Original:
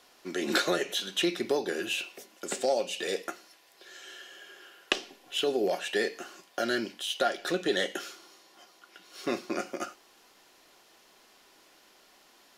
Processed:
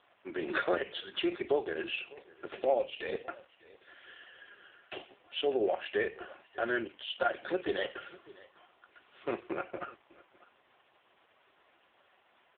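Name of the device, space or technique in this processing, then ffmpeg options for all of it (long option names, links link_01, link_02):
satellite phone: -filter_complex "[0:a]asettb=1/sr,asplit=3[link_01][link_02][link_03];[link_01]atrim=end=4.554[link_04];[link_02]atrim=start=4.55:end=5.04,asetpts=PTS-STARTPTS,afade=type=in:duration=0.004:curve=qsin,afade=type=out:start_time=0.486:duration=0.004:curve=qsin,adynamicequalizer=threshold=0.00282:dfrequency=760:dqfactor=3.3:tfrequency=760:tqfactor=3.3:attack=5:release=100:ratio=0.375:range=2:mode=boostabove:tftype=bell[link_05];[link_03]atrim=start=5.036[link_06];[link_04][link_05]acrossfade=duration=0.004:curve1=hsin:curve2=qsin[link_07];[link_07][link_06]acrossfade=duration=0.004:curve1=qsin:curve2=hsin,highpass=360,lowpass=3100,aecho=1:1:600:0.0794,volume=1dB" -ar 8000 -c:a libopencore_amrnb -b:a 4750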